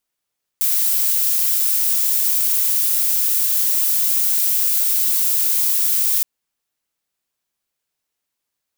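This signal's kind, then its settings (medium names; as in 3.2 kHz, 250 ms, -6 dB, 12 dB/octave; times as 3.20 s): noise violet, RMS -17.5 dBFS 5.62 s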